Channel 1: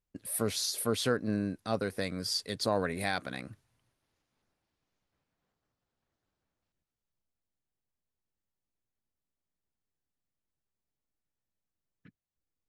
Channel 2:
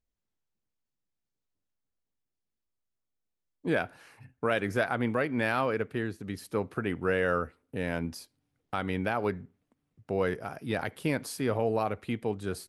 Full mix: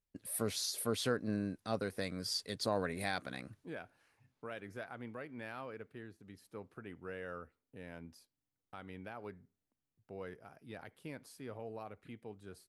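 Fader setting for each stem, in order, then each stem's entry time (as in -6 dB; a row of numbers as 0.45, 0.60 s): -5.0, -17.5 dB; 0.00, 0.00 s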